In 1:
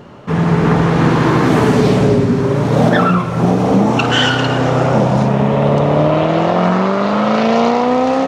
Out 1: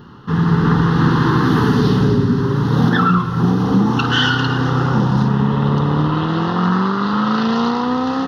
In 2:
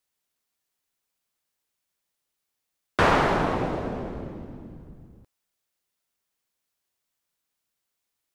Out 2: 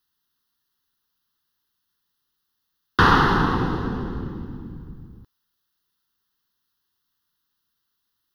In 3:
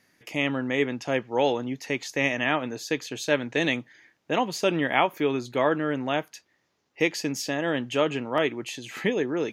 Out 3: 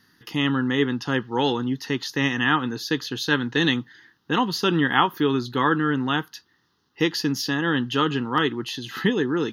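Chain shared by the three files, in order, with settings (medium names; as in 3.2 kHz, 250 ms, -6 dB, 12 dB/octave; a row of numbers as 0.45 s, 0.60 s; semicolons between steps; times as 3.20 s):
static phaser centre 2.3 kHz, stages 6; peak normalisation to -3 dBFS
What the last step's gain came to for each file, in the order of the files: 0.0 dB, +7.5 dB, +8.0 dB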